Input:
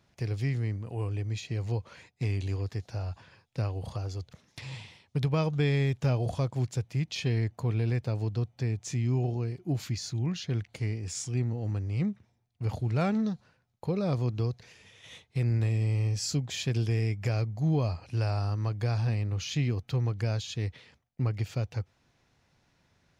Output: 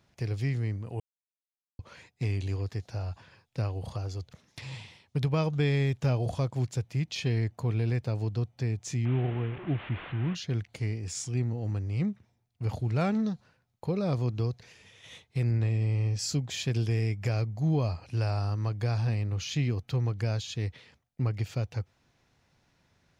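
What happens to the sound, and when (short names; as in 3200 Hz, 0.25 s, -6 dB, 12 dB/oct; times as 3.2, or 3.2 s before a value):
1–1.79 mute
9.05–10.35 delta modulation 16 kbps, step -36 dBFS
15.51–16.19 air absorption 84 m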